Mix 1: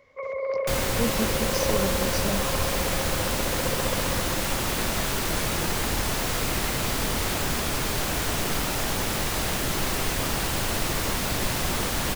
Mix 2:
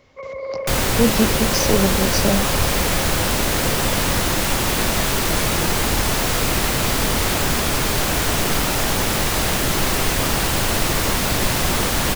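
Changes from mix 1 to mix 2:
speech +10.5 dB; second sound +7.0 dB

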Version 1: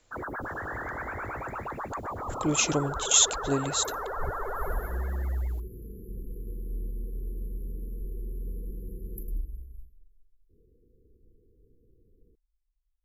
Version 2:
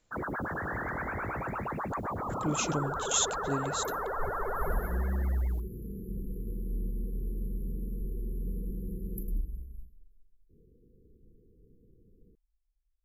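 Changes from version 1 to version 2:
speech -8.0 dB; master: add peaking EQ 180 Hz +9 dB 0.84 oct

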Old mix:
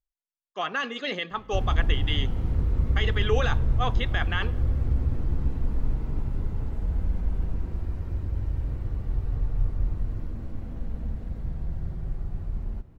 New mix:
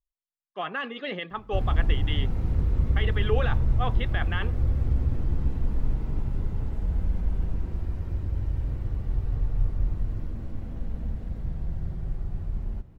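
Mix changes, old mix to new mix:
speech: add distance through air 350 m; reverb: off

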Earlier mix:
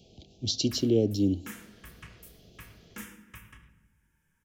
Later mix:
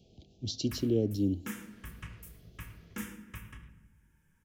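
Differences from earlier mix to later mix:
speech -8.5 dB; master: add bass shelf 480 Hz +6 dB

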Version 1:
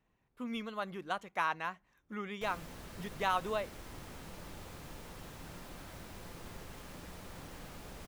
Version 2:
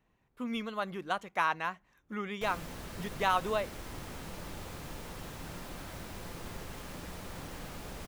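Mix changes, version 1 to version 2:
speech +3.5 dB; background +5.0 dB

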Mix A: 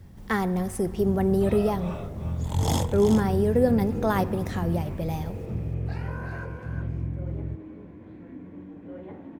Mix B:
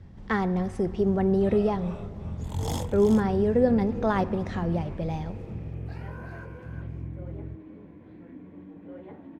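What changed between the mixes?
speech: add distance through air 120 m; first sound -6.0 dB; second sound: send -8.0 dB

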